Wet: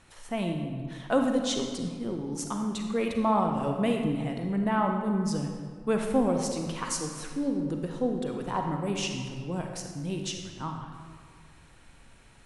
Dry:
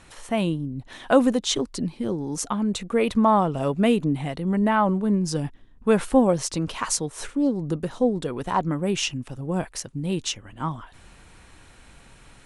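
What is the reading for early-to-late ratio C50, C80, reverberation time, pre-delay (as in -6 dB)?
3.5 dB, 5.5 dB, 1.8 s, 35 ms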